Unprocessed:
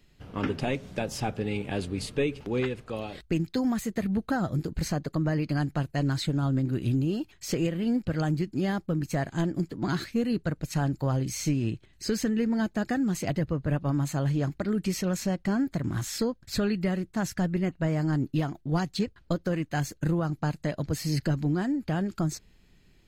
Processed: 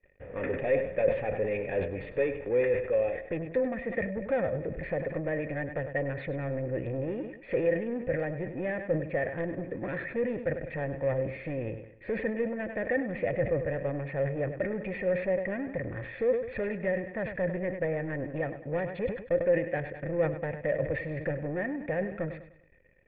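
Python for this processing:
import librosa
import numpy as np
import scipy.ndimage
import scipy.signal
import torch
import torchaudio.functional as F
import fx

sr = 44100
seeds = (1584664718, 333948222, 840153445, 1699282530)

y = fx.wiener(x, sr, points=9)
y = fx.peak_eq(y, sr, hz=230.0, db=-7.0, octaves=2.3)
y = fx.leveller(y, sr, passes=3)
y = fx.formant_cascade(y, sr, vowel='e')
y = fx.echo_feedback(y, sr, ms=100, feedback_pct=41, wet_db=-13.0)
y = fx.sustainer(y, sr, db_per_s=91.0)
y = y * librosa.db_to_amplitude(8.0)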